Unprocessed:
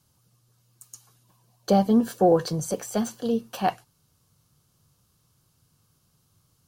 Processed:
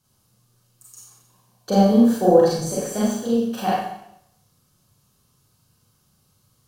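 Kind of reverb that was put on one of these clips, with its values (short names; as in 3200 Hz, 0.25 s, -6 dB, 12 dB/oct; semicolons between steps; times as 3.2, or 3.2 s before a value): Schroeder reverb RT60 0.75 s, combs from 30 ms, DRR -7 dB; gain -4 dB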